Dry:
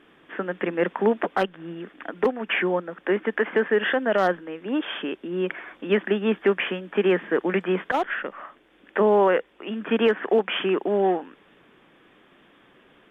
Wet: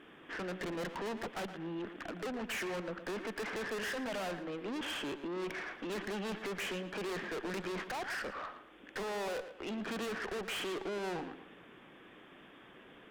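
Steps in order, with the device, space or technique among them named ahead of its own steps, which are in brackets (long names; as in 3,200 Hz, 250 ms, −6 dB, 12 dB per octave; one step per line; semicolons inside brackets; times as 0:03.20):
rockabilly slapback (tube saturation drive 37 dB, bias 0.3; tape delay 115 ms, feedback 34%, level −9 dB, low-pass 3,500 Hz)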